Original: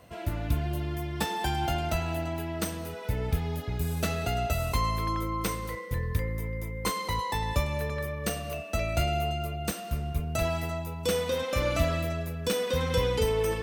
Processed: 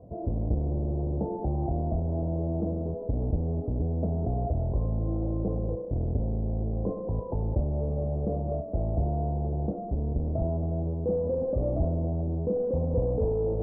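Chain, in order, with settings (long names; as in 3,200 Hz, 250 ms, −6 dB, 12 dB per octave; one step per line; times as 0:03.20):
each half-wave held at its own peak
Butterworth low-pass 680 Hz 36 dB per octave
in parallel at −2 dB: compressor whose output falls as the input rises −30 dBFS, ratio −1
on the sum: level −5.5 dB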